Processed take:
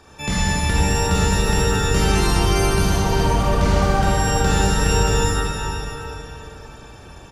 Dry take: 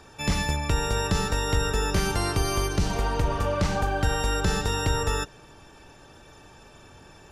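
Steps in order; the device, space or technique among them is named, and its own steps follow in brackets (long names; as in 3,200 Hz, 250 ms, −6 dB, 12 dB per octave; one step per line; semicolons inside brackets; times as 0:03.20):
cave (single-tap delay 371 ms −11 dB; convolution reverb RT60 3.4 s, pre-delay 28 ms, DRR −6 dB)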